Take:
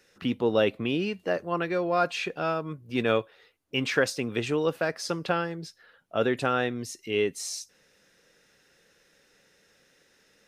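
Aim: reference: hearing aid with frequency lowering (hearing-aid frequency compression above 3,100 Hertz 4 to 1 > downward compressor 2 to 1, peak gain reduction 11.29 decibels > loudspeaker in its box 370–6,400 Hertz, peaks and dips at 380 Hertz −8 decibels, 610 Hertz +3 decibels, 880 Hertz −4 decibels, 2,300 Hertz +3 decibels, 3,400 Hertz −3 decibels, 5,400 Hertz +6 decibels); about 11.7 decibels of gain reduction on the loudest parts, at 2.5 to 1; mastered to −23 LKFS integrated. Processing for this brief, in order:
downward compressor 2.5 to 1, threshold −36 dBFS
hearing-aid frequency compression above 3,100 Hz 4 to 1
downward compressor 2 to 1, threshold −49 dBFS
loudspeaker in its box 370–6,400 Hz, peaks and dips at 380 Hz −8 dB, 610 Hz +3 dB, 880 Hz −4 dB, 2,300 Hz +3 dB, 3,400 Hz −3 dB, 5,400 Hz +6 dB
level +24.5 dB

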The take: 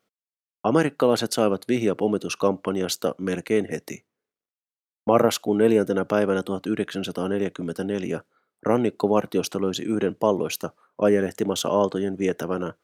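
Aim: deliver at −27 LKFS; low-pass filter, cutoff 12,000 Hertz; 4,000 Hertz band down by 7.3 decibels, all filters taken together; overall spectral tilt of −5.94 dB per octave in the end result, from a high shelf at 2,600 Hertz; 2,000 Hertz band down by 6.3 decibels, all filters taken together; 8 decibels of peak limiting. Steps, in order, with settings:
low-pass filter 12,000 Hz
parametric band 2,000 Hz −6 dB
high-shelf EQ 2,600 Hz −5 dB
parametric band 4,000 Hz −3 dB
level −0.5 dB
brickwall limiter −12.5 dBFS

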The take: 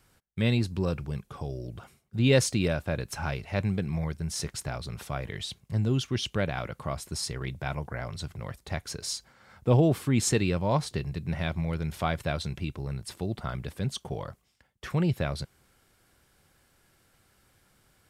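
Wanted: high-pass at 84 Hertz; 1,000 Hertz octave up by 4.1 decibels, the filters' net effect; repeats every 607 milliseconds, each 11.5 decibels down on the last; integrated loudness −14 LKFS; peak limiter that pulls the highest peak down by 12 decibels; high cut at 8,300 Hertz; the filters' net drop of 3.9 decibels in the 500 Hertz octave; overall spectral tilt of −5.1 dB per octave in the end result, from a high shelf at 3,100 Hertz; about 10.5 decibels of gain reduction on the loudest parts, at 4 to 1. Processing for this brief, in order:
high-pass filter 84 Hz
low-pass filter 8,300 Hz
parametric band 500 Hz −7 dB
parametric band 1,000 Hz +8.5 dB
high-shelf EQ 3,100 Hz −6.5 dB
downward compressor 4 to 1, threshold −31 dBFS
brickwall limiter −29 dBFS
repeating echo 607 ms, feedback 27%, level −11.5 dB
level +26.5 dB

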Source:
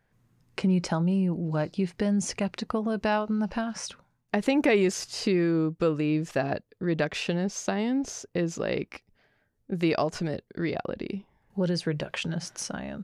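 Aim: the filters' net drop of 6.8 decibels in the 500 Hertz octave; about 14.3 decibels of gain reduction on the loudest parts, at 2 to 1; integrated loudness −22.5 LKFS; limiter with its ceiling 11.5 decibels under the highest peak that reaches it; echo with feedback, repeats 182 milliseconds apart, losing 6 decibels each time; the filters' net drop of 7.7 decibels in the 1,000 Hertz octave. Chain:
parametric band 500 Hz −7.5 dB
parametric band 1,000 Hz −7.5 dB
downward compressor 2 to 1, threshold −50 dBFS
brickwall limiter −34.5 dBFS
repeating echo 182 ms, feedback 50%, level −6 dB
level +21 dB

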